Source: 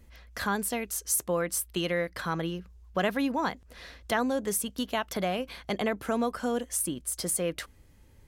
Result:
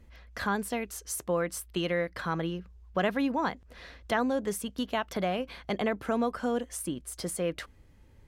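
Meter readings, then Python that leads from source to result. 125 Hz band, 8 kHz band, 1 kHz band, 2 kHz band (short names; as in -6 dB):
0.0 dB, -8.0 dB, -0.5 dB, -1.0 dB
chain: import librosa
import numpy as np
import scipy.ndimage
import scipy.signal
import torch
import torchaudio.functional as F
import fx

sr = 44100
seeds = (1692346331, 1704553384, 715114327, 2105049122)

y = fx.high_shelf(x, sr, hz=5800.0, db=-11.0)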